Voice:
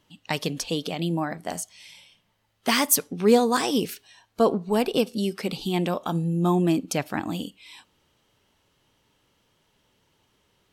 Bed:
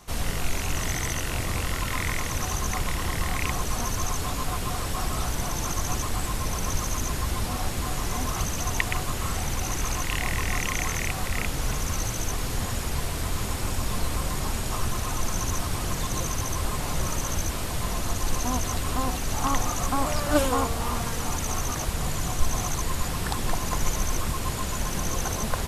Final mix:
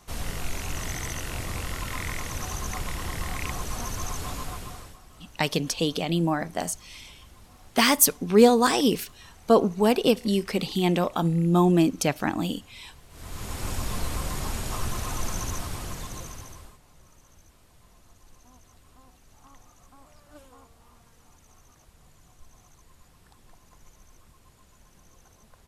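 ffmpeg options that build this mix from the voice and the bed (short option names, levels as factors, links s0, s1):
-filter_complex "[0:a]adelay=5100,volume=1.26[s0];[1:a]volume=6.68,afade=t=out:st=4.34:d=0.65:silence=0.112202,afade=t=in:st=13.09:d=0.61:silence=0.0891251,afade=t=out:st=15.26:d=1.53:silence=0.0501187[s1];[s0][s1]amix=inputs=2:normalize=0"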